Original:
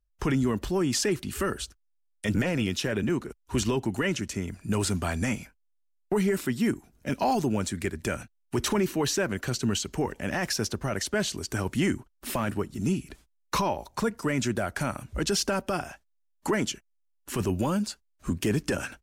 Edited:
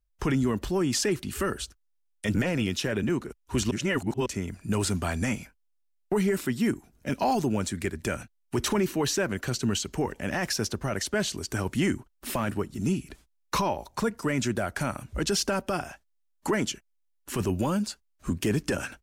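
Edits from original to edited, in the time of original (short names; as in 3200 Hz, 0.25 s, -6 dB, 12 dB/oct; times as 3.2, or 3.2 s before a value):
3.71–4.26 reverse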